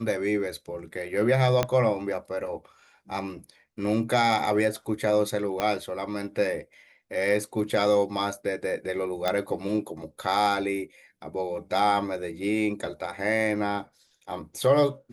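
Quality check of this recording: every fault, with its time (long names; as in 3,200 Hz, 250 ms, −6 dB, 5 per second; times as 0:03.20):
0:01.63: click −9 dBFS
0:05.60: click −12 dBFS
0:09.28: click −11 dBFS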